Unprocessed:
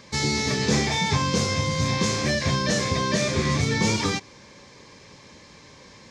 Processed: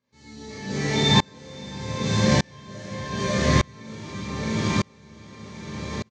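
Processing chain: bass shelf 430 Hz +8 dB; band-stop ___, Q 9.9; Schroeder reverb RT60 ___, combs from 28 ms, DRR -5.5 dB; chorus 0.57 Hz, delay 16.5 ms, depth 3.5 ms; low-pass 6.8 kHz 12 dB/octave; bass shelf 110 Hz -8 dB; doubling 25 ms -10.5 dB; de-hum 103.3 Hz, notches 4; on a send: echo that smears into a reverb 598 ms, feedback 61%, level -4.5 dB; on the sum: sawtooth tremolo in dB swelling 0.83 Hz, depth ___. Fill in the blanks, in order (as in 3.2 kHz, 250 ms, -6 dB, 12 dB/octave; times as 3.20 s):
5.2 kHz, 1.5 s, 33 dB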